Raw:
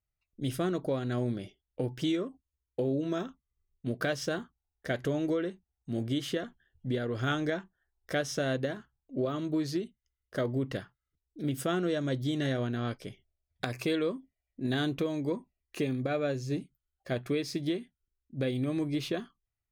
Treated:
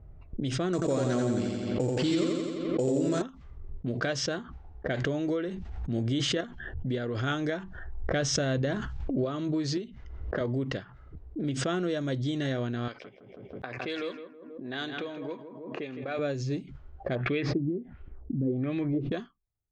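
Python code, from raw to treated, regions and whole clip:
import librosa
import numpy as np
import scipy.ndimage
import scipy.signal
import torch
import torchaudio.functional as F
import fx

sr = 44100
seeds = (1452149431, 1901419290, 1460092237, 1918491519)

y = fx.chain(x, sr, fx.sample_hold(seeds[0], rate_hz=7600.0, jitter_pct=0),
    fx.echo_feedback(ms=86, feedback_pct=57, wet_db=-3.5),
    fx.env_flatten(amount_pct=50), at=(0.73, 3.22))
y = fx.chain(y, sr, fx.low_shelf(hz=91.0, db=7.0),
    fx.sustainer(db_per_s=23.0), at=(5.48, 6.41))
y = fx.chain(y, sr, fx.low_shelf(hz=110.0, db=11.5),
    fx.sustainer(db_per_s=42.0), at=(7.59, 9.24))
y = fx.chain(y, sr, fx.steep_lowpass(hz=7300.0, slope=36),
    fx.band_squash(depth_pct=100), at=(9.77, 10.41))
y = fx.chain(y, sr, fx.highpass(hz=730.0, slope=6),
    fx.echo_feedback(ms=162, feedback_pct=37, wet_db=-9.5), at=(12.88, 16.19))
y = fx.chain(y, sr, fx.peak_eq(hz=1000.0, db=-4.0, octaves=0.2),
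    fx.filter_lfo_lowpass(shape='sine', hz=1.4, low_hz=230.0, high_hz=3000.0, q=2.1), at=(17.15, 19.12))
y = fx.env_lowpass(y, sr, base_hz=540.0, full_db=-27.5)
y = scipy.signal.sosfilt(scipy.signal.butter(8, 7800.0, 'lowpass', fs=sr, output='sos'), y)
y = fx.pre_swell(y, sr, db_per_s=39.0)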